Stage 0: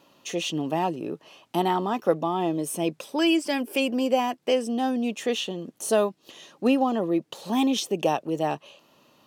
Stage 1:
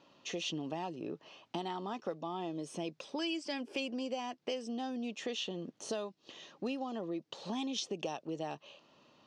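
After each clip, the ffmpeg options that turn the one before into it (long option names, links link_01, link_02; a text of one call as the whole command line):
ffmpeg -i in.wav -filter_complex "[0:a]lowpass=frequency=6000:width=0.5412,lowpass=frequency=6000:width=1.3066,acrossover=split=3800[link_01][link_02];[link_01]acompressor=threshold=-31dB:ratio=5[link_03];[link_03][link_02]amix=inputs=2:normalize=0,volume=-5dB" out.wav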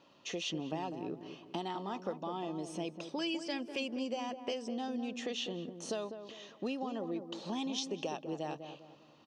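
ffmpeg -i in.wav -filter_complex "[0:a]asplit=2[link_01][link_02];[link_02]adelay=200,lowpass=frequency=960:poles=1,volume=-7.5dB,asplit=2[link_03][link_04];[link_04]adelay=200,lowpass=frequency=960:poles=1,volume=0.43,asplit=2[link_05][link_06];[link_06]adelay=200,lowpass=frequency=960:poles=1,volume=0.43,asplit=2[link_07][link_08];[link_08]adelay=200,lowpass=frequency=960:poles=1,volume=0.43,asplit=2[link_09][link_10];[link_10]adelay=200,lowpass=frequency=960:poles=1,volume=0.43[link_11];[link_01][link_03][link_05][link_07][link_09][link_11]amix=inputs=6:normalize=0" out.wav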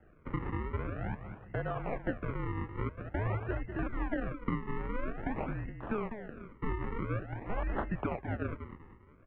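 ffmpeg -i in.wav -af "acrusher=samples=34:mix=1:aa=0.000001:lfo=1:lforange=34:lforate=0.48,highpass=frequency=160:width_type=q:width=0.5412,highpass=frequency=160:width_type=q:width=1.307,lowpass=frequency=2400:width_type=q:width=0.5176,lowpass=frequency=2400:width_type=q:width=0.7071,lowpass=frequency=2400:width_type=q:width=1.932,afreqshift=-220,volume=4dB" out.wav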